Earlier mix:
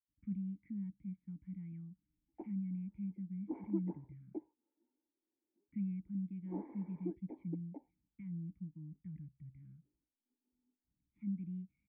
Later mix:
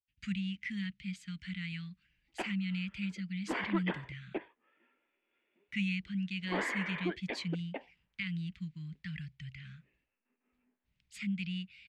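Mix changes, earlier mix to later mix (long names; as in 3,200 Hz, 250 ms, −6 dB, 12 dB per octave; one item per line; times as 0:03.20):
speech −6.5 dB
master: remove formant resonators in series u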